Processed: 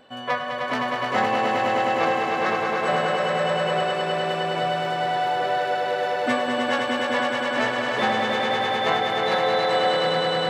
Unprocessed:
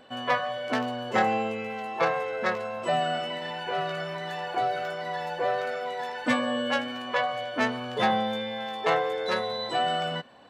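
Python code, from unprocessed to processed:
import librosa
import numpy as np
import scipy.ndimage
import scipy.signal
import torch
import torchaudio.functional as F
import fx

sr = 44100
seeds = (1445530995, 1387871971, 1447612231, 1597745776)

y = fx.echo_swell(x, sr, ms=103, loudest=5, wet_db=-4.5)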